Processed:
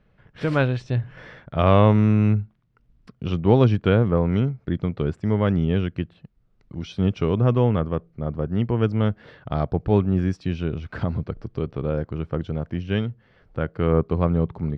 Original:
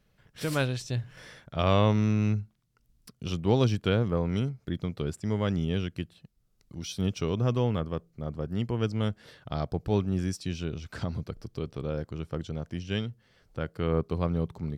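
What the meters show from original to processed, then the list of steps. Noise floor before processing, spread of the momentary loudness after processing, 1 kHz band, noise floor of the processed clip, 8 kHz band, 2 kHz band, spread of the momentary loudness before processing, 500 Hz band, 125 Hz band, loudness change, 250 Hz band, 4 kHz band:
-70 dBFS, 13 LU, +7.5 dB, -62 dBFS, under -10 dB, +5.5 dB, 13 LU, +7.5 dB, +7.5 dB, +7.5 dB, +7.5 dB, -0.5 dB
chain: low-pass 2.2 kHz 12 dB/octave; trim +7.5 dB

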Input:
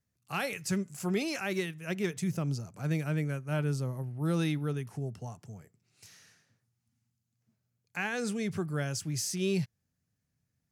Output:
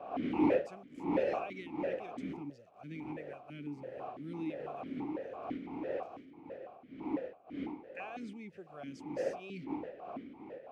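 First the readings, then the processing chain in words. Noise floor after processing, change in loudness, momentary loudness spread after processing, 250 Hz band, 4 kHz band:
-57 dBFS, -6.0 dB, 16 LU, -3.0 dB, -15.5 dB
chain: send-on-delta sampling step -52 dBFS; wind noise 570 Hz -29 dBFS; stepped vowel filter 6 Hz

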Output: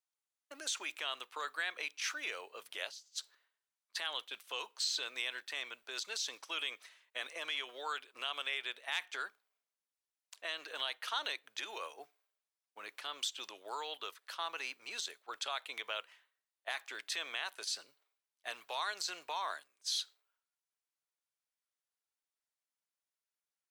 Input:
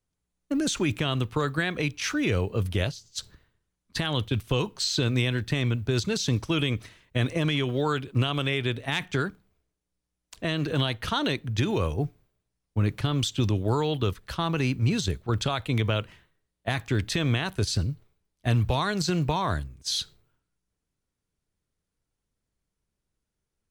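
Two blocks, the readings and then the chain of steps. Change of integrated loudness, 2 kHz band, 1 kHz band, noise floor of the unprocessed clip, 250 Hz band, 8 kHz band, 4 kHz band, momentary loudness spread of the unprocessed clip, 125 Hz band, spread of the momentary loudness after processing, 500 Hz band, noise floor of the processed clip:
-12.5 dB, -7.5 dB, -9.5 dB, -84 dBFS, -34.0 dB, -7.0 dB, -7.0 dB, 6 LU, under -40 dB, 9 LU, -19.0 dB, under -85 dBFS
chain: Bessel high-pass 920 Hz, order 4; trim -7 dB

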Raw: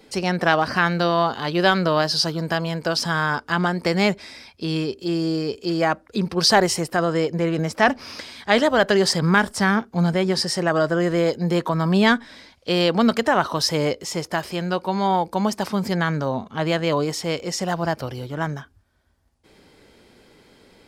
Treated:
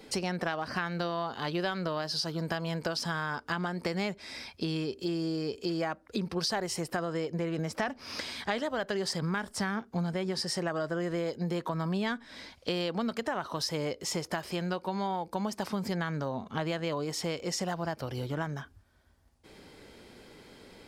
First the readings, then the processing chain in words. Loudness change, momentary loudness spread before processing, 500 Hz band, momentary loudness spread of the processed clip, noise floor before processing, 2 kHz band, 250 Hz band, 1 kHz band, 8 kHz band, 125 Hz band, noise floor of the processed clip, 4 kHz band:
-12.0 dB, 8 LU, -12.0 dB, 6 LU, -56 dBFS, -13.0 dB, -11.5 dB, -13.0 dB, -9.5 dB, -10.5 dB, -59 dBFS, -11.0 dB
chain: compression 6:1, threshold -30 dBFS, peak gain reduction 17.5 dB

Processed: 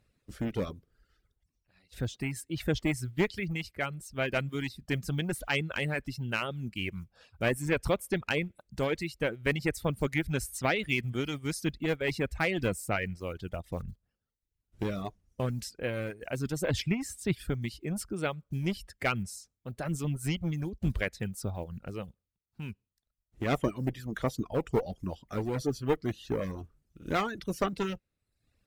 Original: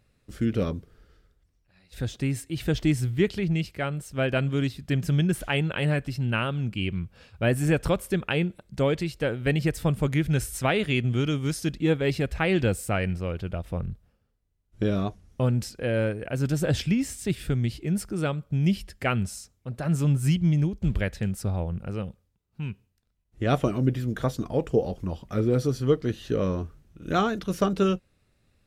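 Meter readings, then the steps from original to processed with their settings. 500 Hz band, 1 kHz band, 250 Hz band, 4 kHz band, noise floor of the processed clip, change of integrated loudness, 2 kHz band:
-5.5 dB, -4.0 dB, -7.5 dB, -3.5 dB, -85 dBFS, -6.0 dB, -1.5 dB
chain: block-companded coder 7-bit; one-sided clip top -23 dBFS; dynamic bell 2.1 kHz, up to +6 dB, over -48 dBFS, Q 3.6; harmonic-percussive split percussive +6 dB; reverb removal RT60 0.71 s; trim -8 dB

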